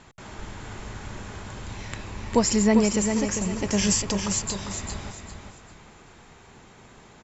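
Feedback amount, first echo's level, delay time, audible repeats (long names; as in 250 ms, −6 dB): 30%, −6.5 dB, 399 ms, 3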